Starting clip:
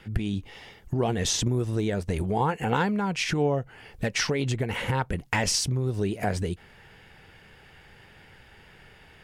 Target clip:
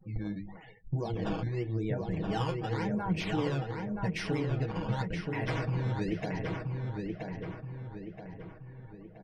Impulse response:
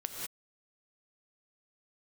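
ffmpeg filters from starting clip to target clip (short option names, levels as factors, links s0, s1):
-filter_complex "[0:a]asplit=2[s0][s1];[s1]asoftclip=type=hard:threshold=0.0841,volume=0.355[s2];[s0][s2]amix=inputs=2:normalize=0,bandreject=f=50:t=h:w=6,bandreject=f=100:t=h:w=6,bandreject=f=150:t=h:w=6,bandreject=f=200:t=h:w=6,bandreject=f=250:t=h:w=6,bandreject=f=300:t=h:w=6,bandreject=f=350:t=h:w=6,bandreject=f=400:t=h:w=6,bandreject=f=450:t=h:w=6,acrusher=samples=13:mix=1:aa=0.000001:lfo=1:lforange=20.8:lforate=0.89,alimiter=limit=0.0891:level=0:latency=1:release=449,flanger=delay=5.2:depth=5:regen=55:speed=1.9:shape=sinusoidal,afftdn=nr=36:nf=-47,lowpass=4300,equalizer=f=1600:w=0.46:g=-3,bandreject=f=1300:w=25,aecho=1:1:6.3:0.59,asplit=2[s3][s4];[s4]adelay=976,lowpass=f=3000:p=1,volume=0.668,asplit=2[s5][s6];[s6]adelay=976,lowpass=f=3000:p=1,volume=0.48,asplit=2[s7][s8];[s8]adelay=976,lowpass=f=3000:p=1,volume=0.48,asplit=2[s9][s10];[s10]adelay=976,lowpass=f=3000:p=1,volume=0.48,asplit=2[s11][s12];[s12]adelay=976,lowpass=f=3000:p=1,volume=0.48,asplit=2[s13][s14];[s14]adelay=976,lowpass=f=3000:p=1,volume=0.48[s15];[s5][s7][s9][s11][s13][s15]amix=inputs=6:normalize=0[s16];[s3][s16]amix=inputs=2:normalize=0"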